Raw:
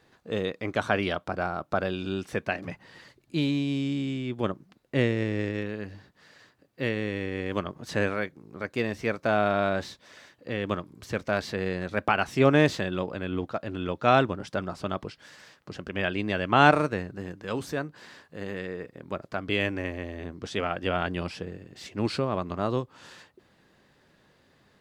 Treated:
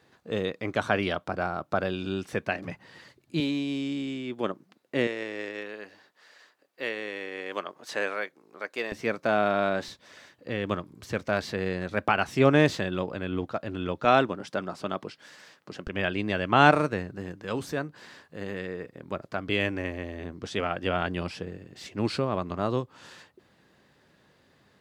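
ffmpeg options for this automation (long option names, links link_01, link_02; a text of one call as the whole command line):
ffmpeg -i in.wav -af "asetnsamples=nb_out_samples=441:pad=0,asendcmd='3.4 highpass f 230;5.07 highpass f 490;8.92 highpass f 150;9.88 highpass f 53;14.05 highpass f 170;15.87 highpass f 54',highpass=65" out.wav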